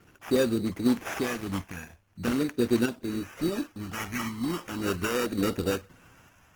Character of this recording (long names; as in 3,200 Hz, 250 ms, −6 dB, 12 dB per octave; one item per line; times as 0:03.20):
phaser sweep stages 2, 0.42 Hz, lowest notch 450–3,200 Hz
aliases and images of a low sample rate 4,200 Hz, jitter 0%
sample-and-hold tremolo
Opus